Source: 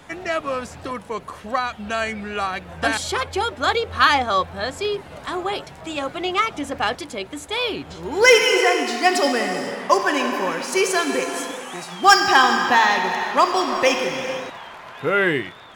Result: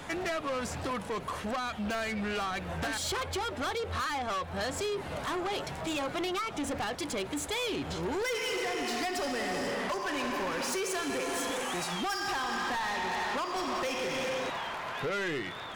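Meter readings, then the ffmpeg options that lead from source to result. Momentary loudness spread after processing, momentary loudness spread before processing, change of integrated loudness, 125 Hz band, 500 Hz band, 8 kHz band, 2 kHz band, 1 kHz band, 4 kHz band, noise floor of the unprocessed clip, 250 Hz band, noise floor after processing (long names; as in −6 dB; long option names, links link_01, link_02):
3 LU, 15 LU, −12.5 dB, −4.5 dB, −12.0 dB, −8.5 dB, −14.0 dB, −13.5 dB, −11.5 dB, −41 dBFS, −8.5 dB, −41 dBFS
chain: -af "acompressor=threshold=-26dB:ratio=10,asoftclip=type=tanh:threshold=-32.5dB,volume=3dB"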